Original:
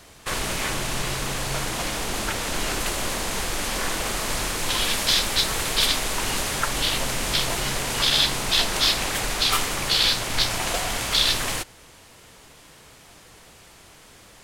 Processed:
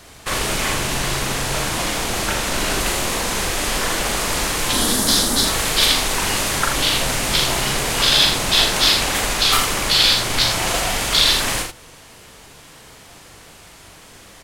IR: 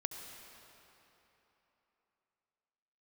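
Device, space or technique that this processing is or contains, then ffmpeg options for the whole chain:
slapback doubling: -filter_complex "[0:a]asettb=1/sr,asplit=3[a][b][c];[a]atrim=end=4.734[d];[b]atrim=start=4.73:end=5.45,asetpts=PTS-STARTPTS,afade=t=in:d=0.004:c=qsin,afade=t=out:st=0.716:d=0.004:c=qsin,equalizer=f=250:t=o:w=0.67:g=11,equalizer=f=2.5k:t=o:w=0.67:g=-12,equalizer=f=10k:t=o:w=0.67:g=5[e];[c]atrim=start=5.446[f];[d][e]acrossfade=d=0.004:c1=hsin:c2=qsin[g];[g][f]acrossfade=d=0.004:c1=qsin:c2=hsin,asplit=3[h][i][j];[i]adelay=40,volume=-5dB[k];[j]adelay=82,volume=-7.5dB[l];[h][k][l]amix=inputs=3:normalize=0,volume=4dB"

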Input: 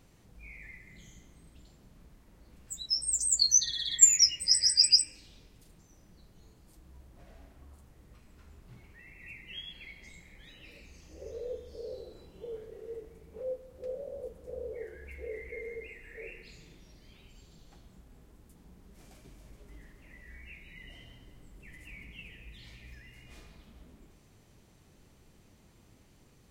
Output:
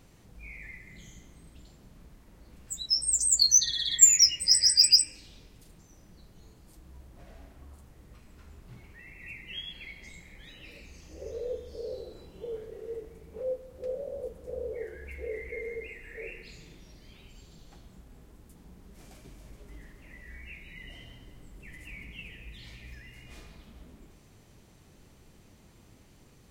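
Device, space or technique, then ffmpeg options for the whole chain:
parallel distortion: -filter_complex "[0:a]asplit=2[a][b];[b]asoftclip=type=hard:threshold=-20dB,volume=-5.5dB[c];[a][c]amix=inputs=2:normalize=0"

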